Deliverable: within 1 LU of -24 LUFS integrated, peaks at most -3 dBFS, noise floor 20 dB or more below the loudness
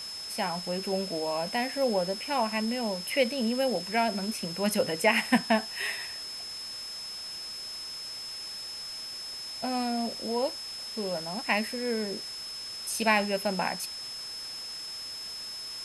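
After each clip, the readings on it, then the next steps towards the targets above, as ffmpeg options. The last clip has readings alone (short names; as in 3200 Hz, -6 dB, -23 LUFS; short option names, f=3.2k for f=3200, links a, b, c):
steady tone 5200 Hz; tone level -37 dBFS; noise floor -39 dBFS; noise floor target -51 dBFS; loudness -30.5 LUFS; peak -11.0 dBFS; loudness target -24.0 LUFS
-> -af "bandreject=f=5.2k:w=30"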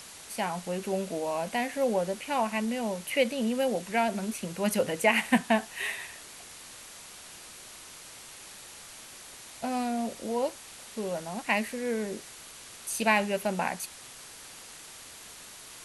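steady tone none; noise floor -48 dBFS; noise floor target -50 dBFS
-> -af "afftdn=nr=6:nf=-48"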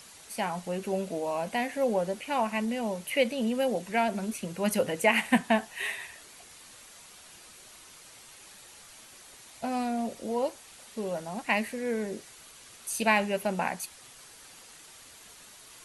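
noise floor -52 dBFS; loudness -30.0 LUFS; peak -10.5 dBFS; loudness target -24.0 LUFS
-> -af "volume=6dB"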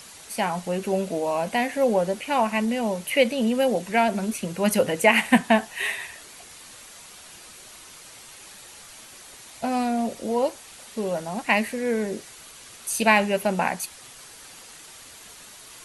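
loudness -24.0 LUFS; peak -4.5 dBFS; noise floor -46 dBFS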